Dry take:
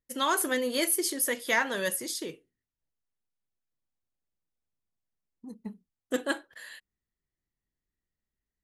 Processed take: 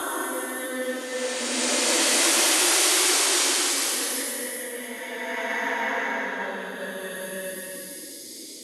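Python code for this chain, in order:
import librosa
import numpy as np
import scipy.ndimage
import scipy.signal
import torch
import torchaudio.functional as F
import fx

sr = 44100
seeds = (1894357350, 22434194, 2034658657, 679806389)

y = fx.spec_paint(x, sr, seeds[0], shape='noise', start_s=0.71, length_s=0.44, low_hz=290.0, high_hz=9800.0, level_db=-22.0)
y = fx.paulstretch(y, sr, seeds[1], factor=4.8, window_s=0.5, from_s=0.36)
y = fx.quant_dither(y, sr, seeds[2], bits=10, dither='none')
y = fx.band_widen(y, sr, depth_pct=40)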